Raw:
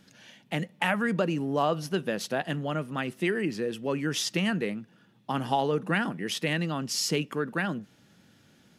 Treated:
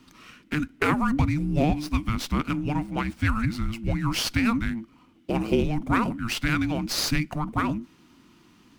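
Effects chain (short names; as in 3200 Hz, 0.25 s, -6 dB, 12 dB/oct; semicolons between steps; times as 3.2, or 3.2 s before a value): frequency shift -450 Hz; running maximum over 3 samples; gain +4 dB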